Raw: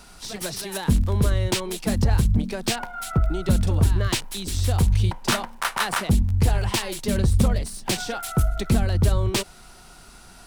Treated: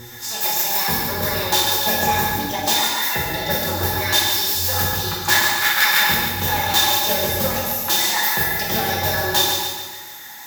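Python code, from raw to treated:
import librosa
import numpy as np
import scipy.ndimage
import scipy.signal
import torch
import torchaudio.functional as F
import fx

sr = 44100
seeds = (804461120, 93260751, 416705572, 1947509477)

p1 = scipy.signal.sosfilt(scipy.signal.butter(2, 83.0, 'highpass', fs=sr, output='sos'), x)
p2 = fx.riaa(p1, sr, side='recording')
p3 = fx.formant_shift(p2, sr, semitones=5)
p4 = fx.peak_eq(p3, sr, hz=9700.0, db=-13.0, octaves=0.62)
p5 = fx.notch(p4, sr, hz=720.0, q=12.0)
p6 = (np.mod(10.0 ** (15.5 / 20.0) * p5 + 1.0, 2.0) - 1.0) / 10.0 ** (15.5 / 20.0)
p7 = p5 + F.gain(torch.from_numpy(p6), -8.0).numpy()
p8 = fx.wow_flutter(p7, sr, seeds[0], rate_hz=2.1, depth_cents=28.0)
p9 = fx.dmg_buzz(p8, sr, base_hz=120.0, harmonics=4, level_db=-36.0, tilt_db=-4, odd_only=False)
p10 = fx.hum_notches(p9, sr, base_hz=60, count=8)
p11 = fx.small_body(p10, sr, hz=(840.0, 1700.0, 3600.0), ring_ms=85, db=18)
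p12 = p11 + fx.echo_feedback(p11, sr, ms=142, feedback_pct=52, wet_db=-7, dry=0)
p13 = fx.rev_gated(p12, sr, seeds[1], gate_ms=370, shape='falling', drr_db=-4.5)
y = F.gain(torch.from_numpy(p13), -3.5).numpy()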